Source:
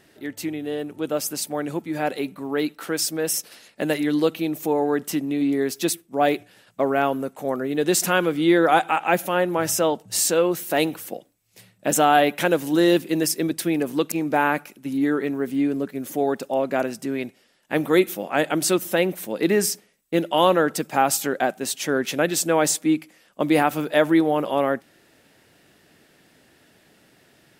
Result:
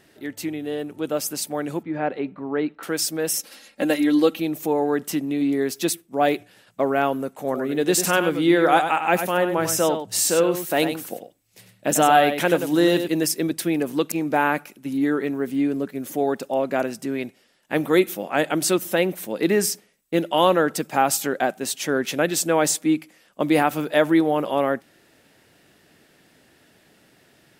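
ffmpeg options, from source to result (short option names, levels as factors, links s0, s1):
-filter_complex "[0:a]asettb=1/sr,asplit=3[s0][s1][s2];[s0]atrim=end=1.834[s3];[s1]atrim=start=1.83:end=2.83,asetpts=PTS-STARTPTS,afade=t=in:d=0.004:c=qsin,afade=t=out:st=0.996:d=0.004:c=qsin,lowpass=2000[s4];[s2]atrim=start=2.826[s5];[s3][s4]acrossfade=d=0.004:c1=hsin:c2=qsin[s6];[s6][s5]acrossfade=d=0.004:c1=qsin:c2=hsin,asettb=1/sr,asplit=3[s7][s8][s9];[s7]atrim=end=3.394[s10];[s8]atrim=start=3.39:end=4.4,asetpts=PTS-STARTPTS,afade=t=in:d=0.004:c=qsin,afade=t=out:st=1.006:d=0.004:c=qsin,aecho=1:1:3.7:0.65,atrim=end_sample=44541[s11];[s9]atrim=start=4.396[s12];[s10][s11]acrossfade=d=0.004:c1=hsin:c2=qsin[s13];[s13][s12]acrossfade=d=0.004:c1=qsin:c2=hsin,asettb=1/sr,asplit=3[s14][s15][s16];[s14]atrim=end=7.374[s17];[s15]atrim=start=7.37:end=13.08,asetpts=PTS-STARTPTS,afade=t=in:d=0.004:c=qsin,afade=t=out:st=5.706:d=0.004:c=qsin,aecho=1:1:97:0.376,atrim=end_sample=251811[s18];[s16]atrim=start=13.076[s19];[s17][s18]acrossfade=d=0.004:c1=hsin:c2=qsin[s20];[s20][s19]acrossfade=d=0.004:c1=qsin:c2=hsin"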